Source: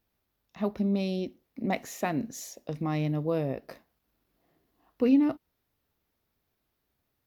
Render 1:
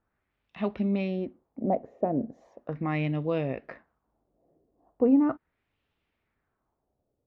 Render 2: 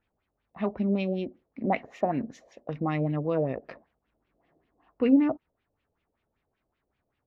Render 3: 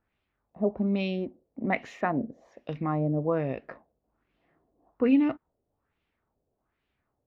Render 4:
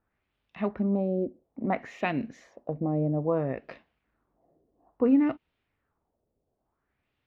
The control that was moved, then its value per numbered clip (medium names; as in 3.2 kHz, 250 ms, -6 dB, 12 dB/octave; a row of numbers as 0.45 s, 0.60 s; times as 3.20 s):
LFO low-pass, rate: 0.38 Hz, 5.2 Hz, 1.2 Hz, 0.59 Hz